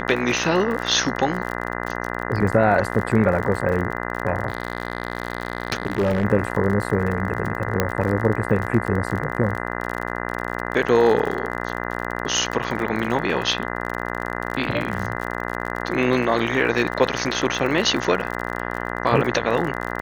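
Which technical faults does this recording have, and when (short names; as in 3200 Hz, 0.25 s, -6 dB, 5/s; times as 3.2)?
buzz 60 Hz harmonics 34 -28 dBFS
crackle 46/s -27 dBFS
4.48–6.25 clipped -16 dBFS
7.8 pop -4 dBFS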